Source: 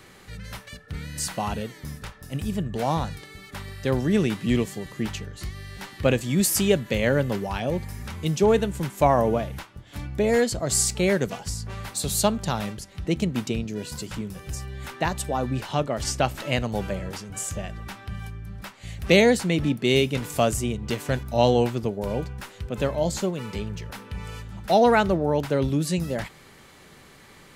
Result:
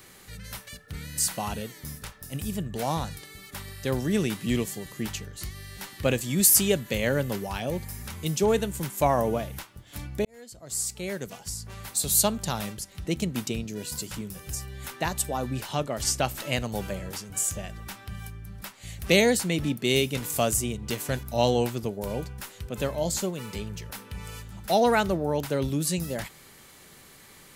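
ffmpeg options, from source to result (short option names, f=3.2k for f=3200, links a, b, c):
-filter_complex "[0:a]asplit=2[a][b];[a]atrim=end=10.25,asetpts=PTS-STARTPTS,afade=t=out:st=10.246:d=0.004:c=hsin[c];[b]atrim=start=10.25,asetpts=PTS-STARTPTS,afade=t=in:d=2.09[d];[c][d]concat=n=2:v=0:a=1,aemphasis=mode=production:type=50kf,volume=-4dB"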